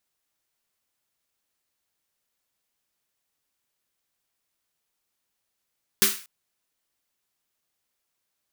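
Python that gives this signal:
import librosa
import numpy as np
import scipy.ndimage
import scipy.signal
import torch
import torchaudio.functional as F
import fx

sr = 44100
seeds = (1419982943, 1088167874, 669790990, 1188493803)

y = fx.drum_snare(sr, seeds[0], length_s=0.24, hz=210.0, second_hz=390.0, noise_db=10.0, noise_from_hz=1200.0, decay_s=0.24, noise_decay_s=0.39)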